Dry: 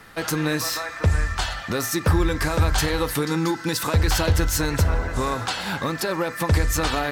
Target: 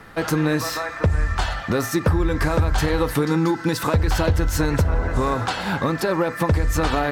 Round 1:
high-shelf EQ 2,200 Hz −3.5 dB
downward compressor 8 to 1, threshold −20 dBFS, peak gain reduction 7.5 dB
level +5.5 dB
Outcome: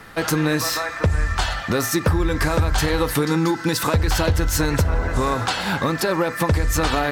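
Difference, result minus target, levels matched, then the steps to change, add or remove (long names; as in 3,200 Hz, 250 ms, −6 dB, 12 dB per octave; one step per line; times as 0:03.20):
4,000 Hz band +4.0 dB
change: high-shelf EQ 2,200 Hz −10 dB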